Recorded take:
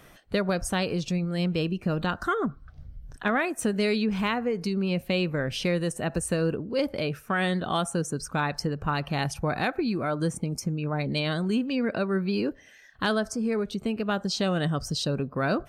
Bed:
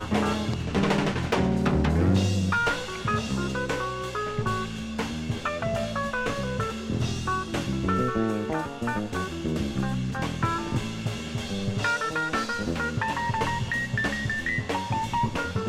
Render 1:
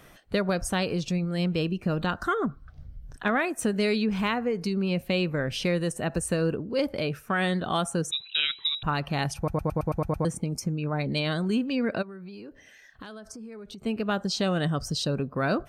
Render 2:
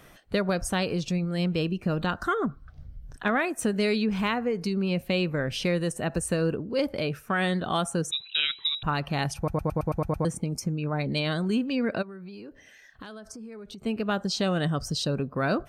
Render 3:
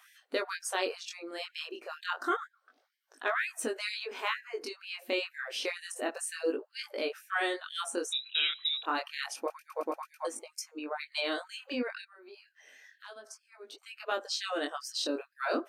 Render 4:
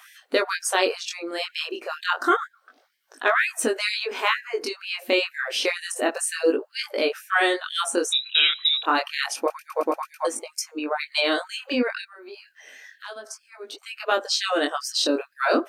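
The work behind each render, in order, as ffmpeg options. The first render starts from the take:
ffmpeg -i in.wav -filter_complex "[0:a]asettb=1/sr,asplit=3[link_01][link_02][link_03];[link_01]atrim=end=8.114[link_04];[link_02]atrim=start=8.11:end=8.83,asetpts=PTS-STARTPTS,afade=type=in:duration=0.004:curve=qsin,afade=type=out:start_time=0.716:duration=0.004:curve=qsin,lowpass=frequency=3400:width_type=q:width=0.5098,lowpass=frequency=3400:width_type=q:width=0.6013,lowpass=frequency=3400:width_type=q:width=0.9,lowpass=frequency=3400:width_type=q:width=2.563,afreqshift=-4000[link_05];[link_03]atrim=start=8.826[link_06];[link_04][link_05]acrossfade=duration=0.004:curve1=hsin:curve2=qsin[link_07];[link_07][link_06]acrossfade=duration=0.004:curve1=qsin:curve2=hsin,asplit=3[link_08][link_09][link_10];[link_08]afade=type=out:start_time=12.01:duration=0.02[link_11];[link_09]acompressor=threshold=-38dB:ratio=16:attack=3.2:release=140:knee=1:detection=peak,afade=type=in:start_time=12.01:duration=0.02,afade=type=out:start_time=13.85:duration=0.02[link_12];[link_10]afade=type=in:start_time=13.85:duration=0.02[link_13];[link_11][link_12][link_13]amix=inputs=3:normalize=0,asplit=9[link_14][link_15][link_16][link_17][link_18][link_19][link_20][link_21][link_22];[link_14]atrim=end=9.482[link_23];[link_15]atrim=start=9.368:end=9.482[link_24];[link_16]atrim=start=9.368:end=9.482[link_25];[link_17]atrim=start=9.368:end=9.482[link_26];[link_18]atrim=start=9.368:end=9.482[link_27];[link_19]atrim=start=9.368:end=9.482[link_28];[link_20]atrim=start=9.368:end=9.482[link_29];[link_21]atrim=start=9.368:end=9.482[link_30];[link_22]atrim=start=10.248[link_31];[link_23][link_24]acrossfade=duration=0.004:curve1=hsin:curve2=hsin[link_32];[link_32][link_25]acrossfade=duration=0.004:curve1=hsin:curve2=hsin[link_33];[link_33][link_26]acrossfade=duration=0.004:curve1=hsin:curve2=hsin[link_34];[link_34][link_27]acrossfade=duration=0.004:curve1=hsin:curve2=hsin[link_35];[link_35][link_28]acrossfade=duration=0.004:curve1=hsin:curve2=hsin[link_36];[link_36][link_29]acrossfade=duration=0.004:curve1=hsin:curve2=hsin[link_37];[link_37][link_30]acrossfade=duration=0.004:curve1=hsin:curve2=hsin[link_38];[link_38][link_31]acrossfade=duration=0.004:curve1=hsin:curve2=hsin" out.wav
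ffmpeg -i in.wav -af anull out.wav
ffmpeg -i in.wav -af "flanger=delay=17.5:depth=7.6:speed=0.29,afftfilt=real='re*gte(b*sr/1024,220*pow(1600/220,0.5+0.5*sin(2*PI*2.1*pts/sr)))':imag='im*gte(b*sr/1024,220*pow(1600/220,0.5+0.5*sin(2*PI*2.1*pts/sr)))':win_size=1024:overlap=0.75" out.wav
ffmpeg -i in.wav -af "volume=10.5dB" out.wav

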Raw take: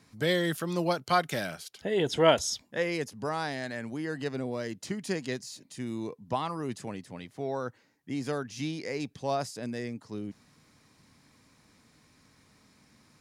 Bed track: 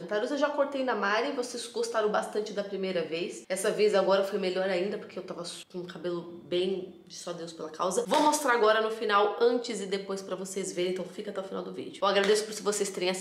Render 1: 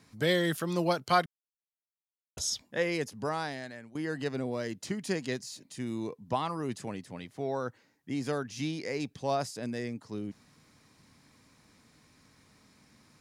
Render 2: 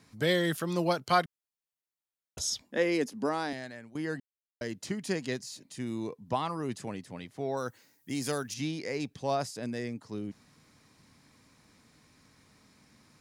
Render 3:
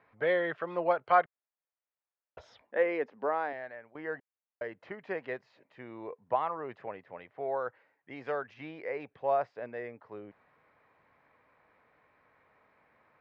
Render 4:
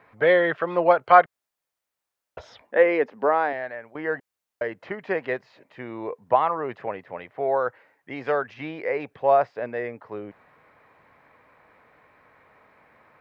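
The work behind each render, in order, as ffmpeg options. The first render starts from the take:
ffmpeg -i in.wav -filter_complex "[0:a]asplit=4[link_01][link_02][link_03][link_04];[link_01]atrim=end=1.26,asetpts=PTS-STARTPTS,afade=type=out:start_time=1.256:duration=0.004:curve=hsin[link_05];[link_02]atrim=start=1.26:end=2.37,asetpts=PTS-STARTPTS,volume=0[link_06];[link_03]atrim=start=2.37:end=3.95,asetpts=PTS-STARTPTS,afade=type=in:duration=0.004:curve=hsin,afade=type=out:start_time=0.9:duration=0.68:silence=0.133352[link_07];[link_04]atrim=start=3.95,asetpts=PTS-STARTPTS,afade=type=in:duration=0.004:curve=hsin:silence=0.133352[link_08];[link_05][link_06][link_07][link_08]concat=n=4:v=0:a=1" out.wav
ffmpeg -i in.wav -filter_complex "[0:a]asettb=1/sr,asplit=3[link_01][link_02][link_03];[link_01]atrim=end=2.704[link_04];[link_02]atrim=start=2.7:end=3.53,asetpts=PTS-STARTPTS,afade=type=in:duration=0.004:curve=qsin,afade=type=out:start_time=0.826:duration=0.004:curve=qsin,highpass=frequency=250:width_type=q:width=2.6[link_05];[link_03]atrim=start=3.526[link_06];[link_04][link_05]acrossfade=duration=0.004:curve1=hsin:curve2=qsin[link_07];[link_07][link_06]acrossfade=duration=0.004:curve1=qsin:curve2=hsin,asettb=1/sr,asplit=3[link_08][link_09][link_10];[link_08]atrim=end=7.574[link_11];[link_09]atrim=start=7.57:end=8.54,asetpts=PTS-STARTPTS,afade=type=in:duration=0.004:curve=qsin,afade=type=out:start_time=0.966:duration=0.004:curve=qsin,aemphasis=mode=production:type=75fm[link_12];[link_10]atrim=start=8.536[link_13];[link_11][link_12]acrossfade=duration=0.004:curve1=hsin:curve2=qsin[link_14];[link_14][link_13]acrossfade=duration=0.004:curve1=qsin:curve2=hsin,asplit=3[link_15][link_16][link_17];[link_15]atrim=end=4.2,asetpts=PTS-STARTPTS,afade=type=out:start_time=4.196:duration=0.004:curve=hsin[link_18];[link_16]atrim=start=4.2:end=4.61,asetpts=PTS-STARTPTS,volume=0[link_19];[link_17]atrim=start=4.61,asetpts=PTS-STARTPTS,afade=type=in:duration=0.004:curve=hsin[link_20];[link_18][link_19][link_20]concat=n=3:v=0:a=1" out.wav
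ffmpeg -i in.wav -af "lowpass=frequency=2200:width=0.5412,lowpass=frequency=2200:width=1.3066,lowshelf=frequency=360:width_type=q:width=1.5:gain=-13" out.wav
ffmpeg -i in.wav -af "volume=10dB" out.wav

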